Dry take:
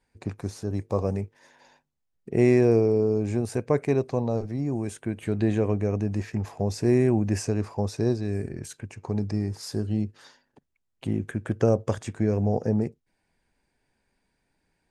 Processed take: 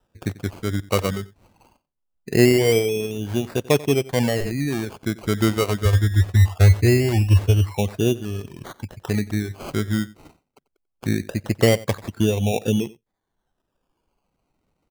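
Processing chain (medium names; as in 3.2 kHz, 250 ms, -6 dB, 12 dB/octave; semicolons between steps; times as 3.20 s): reverb removal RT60 1.5 s; low-pass that closes with the level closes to 2.2 kHz, closed at -22 dBFS; 5.85–7.71 s: resonant low shelf 120 Hz +10.5 dB, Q 3; decimation with a swept rate 20×, swing 60% 0.22 Hz; delay 91 ms -20 dB; 4.05–4.85 s: decay stretcher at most 22 dB/s; trim +5.5 dB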